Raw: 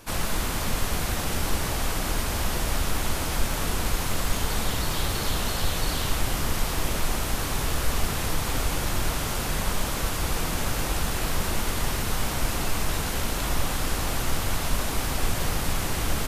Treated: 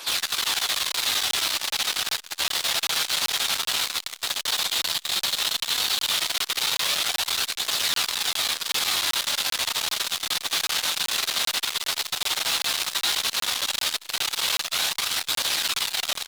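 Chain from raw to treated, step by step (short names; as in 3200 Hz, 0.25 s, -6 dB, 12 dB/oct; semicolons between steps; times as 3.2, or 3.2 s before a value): octaver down 1 oct, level 0 dB; HPF 840 Hz 12 dB/oct; bell 3800 Hz +14 dB 1 oct; in parallel at -3 dB: limiter -20 dBFS, peak gain reduction 10 dB; on the sum: wow and flutter 17 cents; flange 0.13 Hz, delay 0.1 ms, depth 8 ms, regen +52%; hard clip -28 dBFS, distortion -9 dB; doubler 12 ms -8.5 dB; echo 83 ms -8 dB; on a send at -14 dB: reverb RT60 1.0 s, pre-delay 75 ms; on the sum: crackling interface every 0.39 s, samples 1024, zero, from 0.92; core saturation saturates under 3200 Hz; gain +8 dB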